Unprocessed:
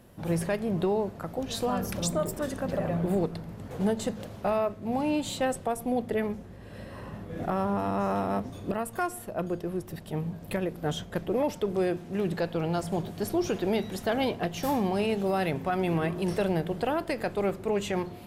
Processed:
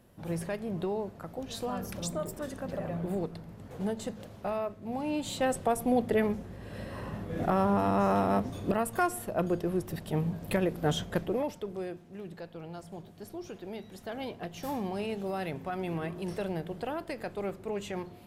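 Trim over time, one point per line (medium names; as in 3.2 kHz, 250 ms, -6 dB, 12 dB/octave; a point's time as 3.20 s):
5.01 s -6 dB
5.68 s +2 dB
11.13 s +2 dB
11.54 s -7.5 dB
12.23 s -14 dB
13.69 s -14 dB
14.76 s -7 dB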